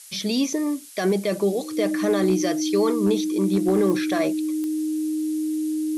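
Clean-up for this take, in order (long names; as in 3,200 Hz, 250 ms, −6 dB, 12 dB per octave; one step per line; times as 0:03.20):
clipped peaks rebuilt −12.5 dBFS
click removal
notch filter 310 Hz, Q 30
noise reduction from a noise print 30 dB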